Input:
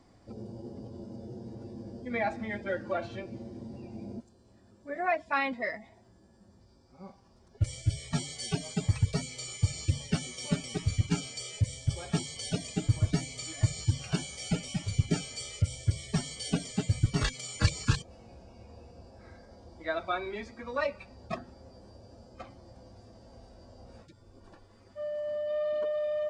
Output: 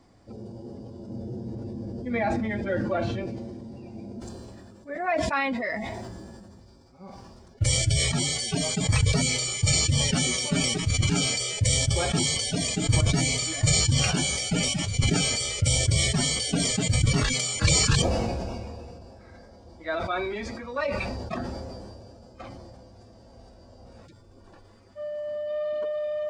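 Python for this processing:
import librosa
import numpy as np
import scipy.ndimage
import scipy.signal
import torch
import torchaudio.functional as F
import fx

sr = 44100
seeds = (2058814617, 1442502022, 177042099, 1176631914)

y = fx.low_shelf(x, sr, hz=370.0, db=7.5, at=(1.08, 3.28))
y = fx.sustainer(y, sr, db_per_s=23.0)
y = F.gain(torch.from_numpy(y), 1.5).numpy()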